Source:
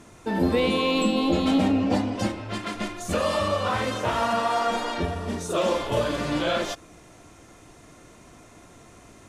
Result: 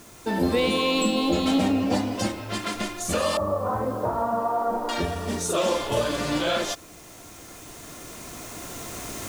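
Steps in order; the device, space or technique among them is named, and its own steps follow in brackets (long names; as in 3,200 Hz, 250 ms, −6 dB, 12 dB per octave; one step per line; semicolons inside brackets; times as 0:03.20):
0:03.37–0:04.89: low-pass filter 1,100 Hz 24 dB per octave
bass and treble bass −2 dB, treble +6 dB
cheap recorder with automatic gain (white noise bed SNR 28 dB; camcorder AGC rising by 5.2 dB per second)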